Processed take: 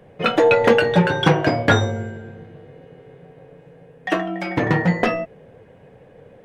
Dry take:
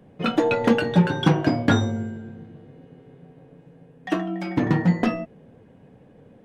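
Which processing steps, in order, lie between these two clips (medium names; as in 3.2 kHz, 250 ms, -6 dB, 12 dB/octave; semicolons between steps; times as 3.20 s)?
ten-band graphic EQ 250 Hz -9 dB, 500 Hz +6 dB, 2 kHz +5 dB; trim +4 dB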